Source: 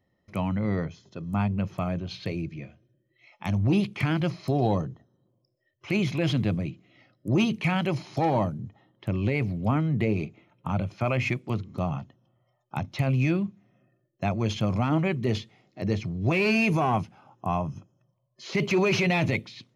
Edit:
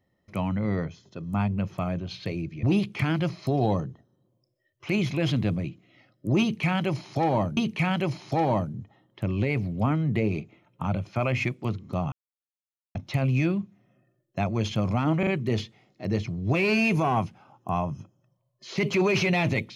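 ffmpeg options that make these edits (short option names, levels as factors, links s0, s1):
-filter_complex "[0:a]asplit=7[s0][s1][s2][s3][s4][s5][s6];[s0]atrim=end=2.632[s7];[s1]atrim=start=3.638:end=8.582[s8];[s2]atrim=start=7.418:end=11.97,asetpts=PTS-STARTPTS,afade=t=out:st=4.548:d=0.004:c=hsin[s9];[s3]atrim=start=11.97:end=12.8,asetpts=PTS-STARTPTS,volume=0[s10];[s4]atrim=start=12.8:end=15.082,asetpts=PTS-STARTPTS,afade=t=in:d=0.004:c=hsin[s11];[s5]atrim=start=15.038:end=15.082[s12];[s6]atrim=start=15.038[s13];[s7][s8]acrossfade=d=0.004:c1=hsin:c2=hsin[s14];[s9][s10][s11]concat=n=3:v=0:a=1[s15];[s14][s15]acrossfade=d=0.004:c1=hsin:c2=hsin[s16];[s16][s12]acrossfade=d=0.004:c1=hsin:c2=hsin[s17];[s17][s13]acrossfade=d=0.004:c1=hsin:c2=hsin"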